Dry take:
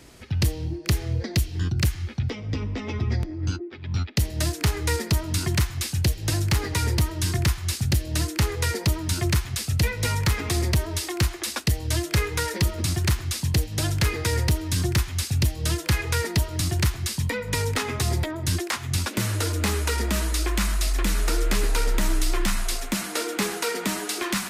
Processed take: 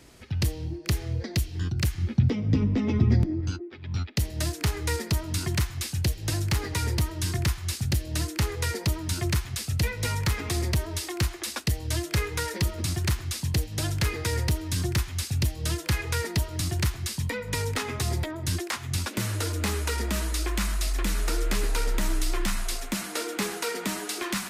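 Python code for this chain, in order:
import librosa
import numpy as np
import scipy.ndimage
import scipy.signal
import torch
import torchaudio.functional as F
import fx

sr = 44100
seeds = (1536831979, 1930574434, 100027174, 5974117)

y = fx.peak_eq(x, sr, hz=190.0, db=13.5, octaves=2.1, at=(1.98, 3.41))
y = y * 10.0 ** (-3.5 / 20.0)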